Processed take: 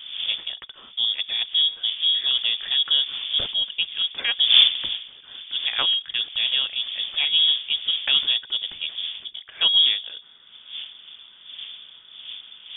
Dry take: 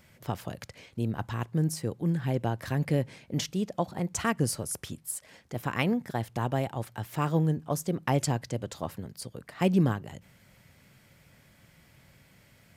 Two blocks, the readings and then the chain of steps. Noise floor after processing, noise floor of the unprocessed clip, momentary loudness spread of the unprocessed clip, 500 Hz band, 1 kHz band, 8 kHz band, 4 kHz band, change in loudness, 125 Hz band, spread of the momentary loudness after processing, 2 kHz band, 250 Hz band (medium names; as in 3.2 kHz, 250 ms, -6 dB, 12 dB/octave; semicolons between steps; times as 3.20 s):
-49 dBFS, -60 dBFS, 11 LU, -15.0 dB, -7.5 dB, under -40 dB, +27.5 dB, +10.5 dB, under -25 dB, 20 LU, +8.0 dB, under -20 dB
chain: block-companded coder 5-bit; wind noise 460 Hz -37 dBFS; bass shelf 200 Hz +6.5 dB; frequency inversion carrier 3.5 kHz; trim +2 dB